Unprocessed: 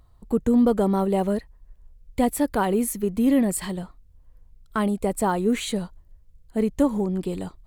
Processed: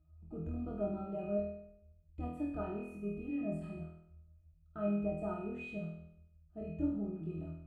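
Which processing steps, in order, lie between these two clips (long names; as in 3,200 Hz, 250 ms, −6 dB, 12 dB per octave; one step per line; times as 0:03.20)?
resonances in every octave D#, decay 0.33 s
flutter between parallel walls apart 4.2 metres, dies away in 0.74 s
level +1.5 dB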